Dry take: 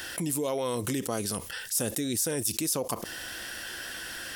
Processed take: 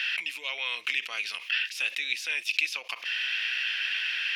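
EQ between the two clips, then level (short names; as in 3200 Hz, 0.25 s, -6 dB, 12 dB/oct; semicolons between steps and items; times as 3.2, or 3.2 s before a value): resonant high-pass 2500 Hz, resonance Q 6.1; air absorption 280 m; +9.0 dB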